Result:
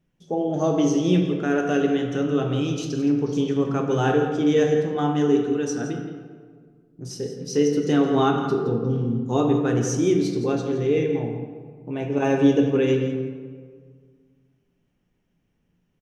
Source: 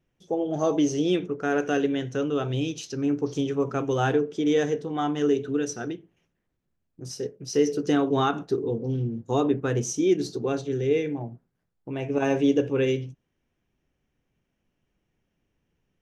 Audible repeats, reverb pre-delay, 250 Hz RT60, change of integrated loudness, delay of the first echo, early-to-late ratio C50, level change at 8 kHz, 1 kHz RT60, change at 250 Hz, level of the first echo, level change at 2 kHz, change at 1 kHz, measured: 1, 3 ms, 2.1 s, +3.5 dB, 0.168 s, 4.5 dB, +1.0 dB, 1.7 s, +4.5 dB, -12.0 dB, +2.0 dB, +2.5 dB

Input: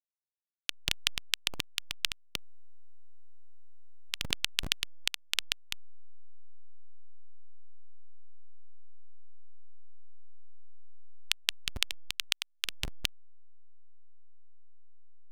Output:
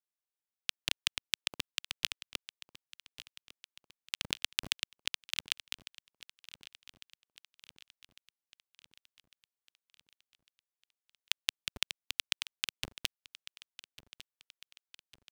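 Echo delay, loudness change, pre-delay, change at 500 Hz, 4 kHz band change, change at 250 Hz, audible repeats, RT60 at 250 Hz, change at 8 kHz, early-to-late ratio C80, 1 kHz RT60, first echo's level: 1.152 s, -2.5 dB, none, -3.0 dB, -2.5 dB, -4.0 dB, 4, none, -2.5 dB, none, none, -17.5 dB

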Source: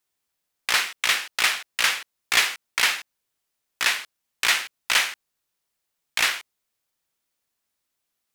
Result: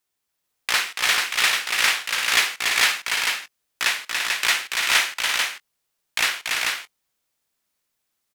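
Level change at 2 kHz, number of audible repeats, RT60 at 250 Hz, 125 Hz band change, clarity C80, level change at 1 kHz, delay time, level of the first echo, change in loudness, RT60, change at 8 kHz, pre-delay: +3.0 dB, 4, none, n/a, none, +3.0 dB, 47 ms, -18.0 dB, +2.0 dB, none, +3.0 dB, none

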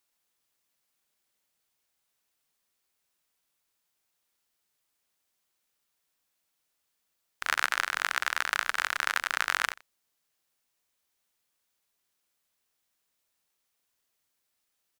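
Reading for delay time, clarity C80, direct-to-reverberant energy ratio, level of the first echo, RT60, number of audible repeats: 88 ms, none, none, -21.0 dB, none, 1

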